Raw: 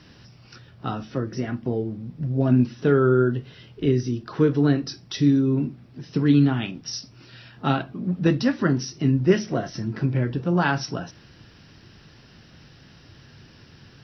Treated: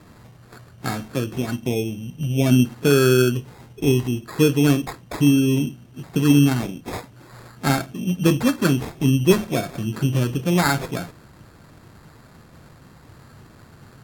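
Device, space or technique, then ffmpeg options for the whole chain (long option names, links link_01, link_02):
crushed at another speed: -af "asetrate=55125,aresample=44100,acrusher=samples=12:mix=1:aa=0.000001,asetrate=35280,aresample=44100,volume=2.5dB"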